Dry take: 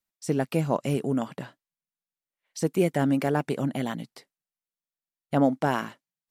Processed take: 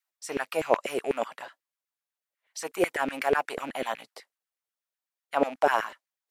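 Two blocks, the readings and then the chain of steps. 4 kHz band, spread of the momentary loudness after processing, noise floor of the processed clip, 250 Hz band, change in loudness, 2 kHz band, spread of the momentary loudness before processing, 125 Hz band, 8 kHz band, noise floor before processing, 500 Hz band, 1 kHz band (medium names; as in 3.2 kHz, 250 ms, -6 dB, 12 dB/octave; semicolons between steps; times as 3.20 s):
+1.5 dB, 13 LU, under -85 dBFS, -10.5 dB, -2.5 dB, +4.5 dB, 16 LU, -21.0 dB, 0.0 dB, under -85 dBFS, 0.0 dB, +2.5 dB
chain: rattle on loud lows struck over -33 dBFS, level -35 dBFS; LFO high-pass saw down 8.1 Hz 390–2000 Hz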